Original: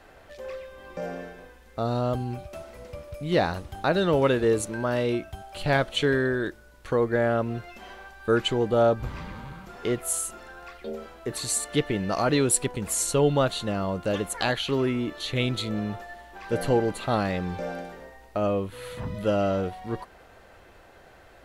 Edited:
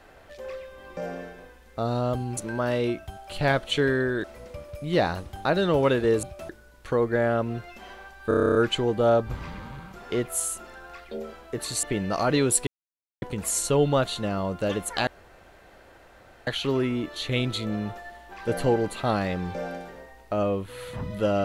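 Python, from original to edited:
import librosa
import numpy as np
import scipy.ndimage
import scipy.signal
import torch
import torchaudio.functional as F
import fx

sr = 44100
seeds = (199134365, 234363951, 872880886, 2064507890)

y = fx.edit(x, sr, fx.swap(start_s=2.37, length_s=0.26, other_s=4.62, other_length_s=1.87),
    fx.stutter(start_s=8.28, slice_s=0.03, count=10),
    fx.cut(start_s=11.56, length_s=0.26),
    fx.insert_silence(at_s=12.66, length_s=0.55),
    fx.insert_room_tone(at_s=14.51, length_s=1.4), tone=tone)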